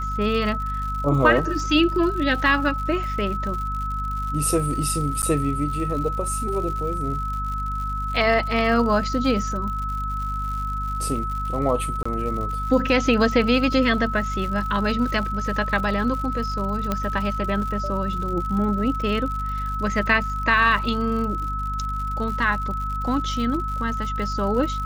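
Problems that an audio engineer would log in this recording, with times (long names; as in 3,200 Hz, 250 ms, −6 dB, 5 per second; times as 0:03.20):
surface crackle 110 per second −31 dBFS
mains hum 50 Hz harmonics 5 −29 dBFS
whistle 1,300 Hz −27 dBFS
0:05.22–0:05.23: drop-out 9.2 ms
0:12.03–0:12.05: drop-out 25 ms
0:16.92: click −10 dBFS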